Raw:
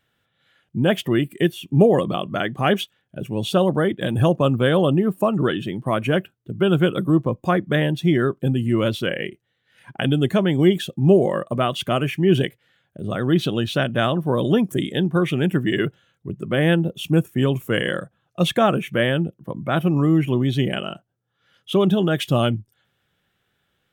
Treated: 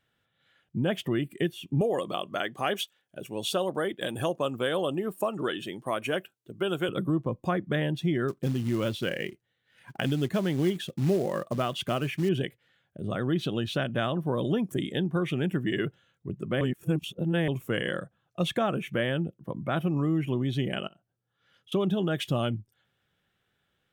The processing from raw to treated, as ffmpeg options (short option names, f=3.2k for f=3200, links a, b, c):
-filter_complex "[0:a]asettb=1/sr,asplit=3[a][b][c];[a]atrim=end=1.814[d];[b]atrim=start=1.81:end=6.89,asetpts=PTS-STARTPTS,afade=t=in:d=0.004:c=qsin,afade=t=out:st=5.076:d=0.004:c=qsin,bass=f=250:g=-13,treble=f=4k:g=8[e];[c]atrim=start=6.886[f];[d][e]acrossfade=d=0.004:c1=hsin:c2=qsin[g];[g][f]acrossfade=d=0.004:c1=qsin:c2=hsin,asettb=1/sr,asplit=3[h][i][j];[h]atrim=end=8.284[k];[i]atrim=start=8.28:end=12.29,asetpts=PTS-STARTPTS,afade=t=in:d=0.004:c=qsin,afade=t=out:st=4.006:d=0.004:c=qsin,acrusher=bits=5:mode=log:mix=0:aa=0.000001[l];[j]atrim=start=12.286[m];[k][l]acrossfade=d=0.004:c1=hsin:c2=qsin[n];[n][m]acrossfade=d=0.004:c1=qsin:c2=hsin,asettb=1/sr,asplit=3[o][p][q];[o]atrim=end=20.874[r];[p]atrim=start=20.87:end=21.72,asetpts=PTS-STARTPTS,afade=t=in:d=0.004:c=qsin,afade=t=out:st=0.846:d=0.004:c=qsin,acompressor=threshold=-47dB:ratio=10:attack=3.2:release=140:knee=1:detection=peak[s];[q]atrim=start=21.716[t];[r][s]acrossfade=d=0.004:c1=hsin:c2=qsin[u];[u][t]acrossfade=d=0.004:c1=qsin:c2=hsin,asplit=3[v][w][x];[v]atrim=end=16.612[y];[w]atrim=start=16.608:end=17.482,asetpts=PTS-STARTPTS,areverse[z];[x]atrim=start=17.478[aa];[y][z]acrossfade=d=0.004:c1=hsin:c2=hsin[ab];[ab][aa]acrossfade=d=0.004:c1=hsin:c2=hsin,highshelf=f=10k:g=-4.5,acompressor=threshold=-21dB:ratio=2,volume=-5dB"